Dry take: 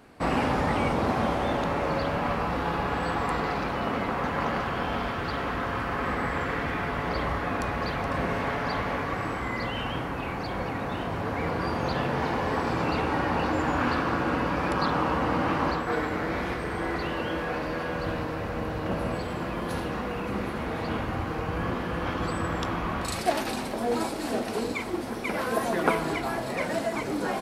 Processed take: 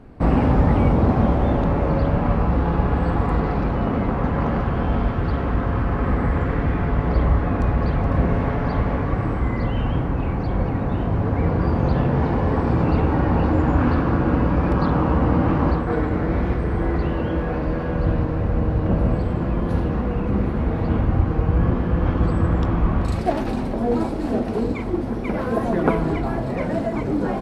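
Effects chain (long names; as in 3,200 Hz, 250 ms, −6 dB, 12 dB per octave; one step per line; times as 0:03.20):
spectral tilt −4 dB per octave
level +1 dB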